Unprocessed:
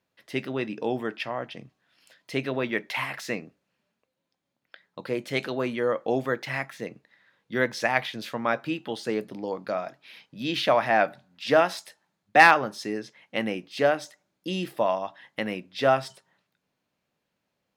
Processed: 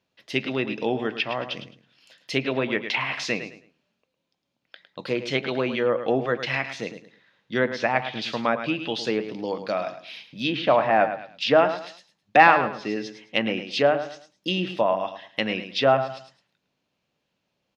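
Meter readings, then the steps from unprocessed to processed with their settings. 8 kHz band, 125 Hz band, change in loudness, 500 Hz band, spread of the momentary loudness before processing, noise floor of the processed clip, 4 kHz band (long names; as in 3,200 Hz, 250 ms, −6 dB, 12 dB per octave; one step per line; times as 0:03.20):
can't be measured, +3.0 dB, +2.0 dB, +3.0 dB, 14 LU, −78 dBFS, +5.0 dB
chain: flat-topped bell 4,100 Hz +8.5 dB
on a send: repeating echo 107 ms, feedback 28%, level −10.5 dB
on the sum: treble cut that deepens with the level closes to 1,500 Hz, closed at −20.5 dBFS
one half of a high-frequency compander decoder only
level +2.5 dB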